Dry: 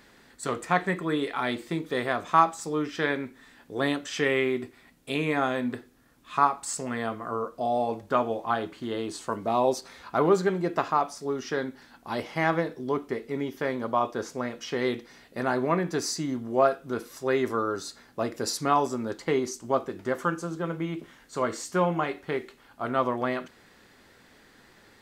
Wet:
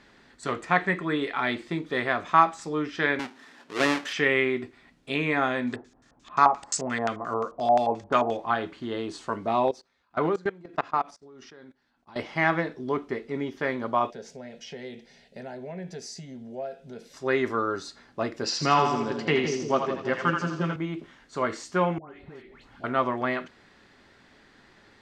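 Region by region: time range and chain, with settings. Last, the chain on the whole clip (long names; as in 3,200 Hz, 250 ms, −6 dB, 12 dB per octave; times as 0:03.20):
0:03.19–0:04.13: each half-wave held at its own peak + high-pass filter 160 Hz + low-shelf EQ 220 Hz −9.5 dB
0:05.67–0:08.37: high-shelf EQ 3,500 Hz +9 dB + auto-filter low-pass square 5.7 Hz 800–6,900 Hz
0:09.68–0:12.16: noise gate −42 dBFS, range −10 dB + output level in coarse steps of 24 dB
0:14.10–0:17.14: dynamic equaliser 4,100 Hz, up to −4 dB, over −52 dBFS, Q 3.7 + downward compressor 2 to 1, threshold −36 dBFS + phaser with its sweep stopped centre 310 Hz, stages 6
0:18.44–0:20.76: loudspeaker in its box 110–7,500 Hz, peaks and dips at 150 Hz +8 dB, 2,800 Hz +10 dB, 5,100 Hz +6 dB + echo with a time of its own for lows and highs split 600 Hz, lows 172 ms, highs 82 ms, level −5 dB
0:21.98–0:22.84: low-shelf EQ 250 Hz +9.5 dB + downward compressor 8 to 1, threshold −41 dBFS + all-pass dispersion highs, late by 136 ms, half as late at 1,400 Hz
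whole clip: low-pass filter 5,600 Hz 12 dB per octave; notch filter 490 Hz, Q 15; dynamic equaliser 2,000 Hz, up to +5 dB, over −41 dBFS, Q 1.4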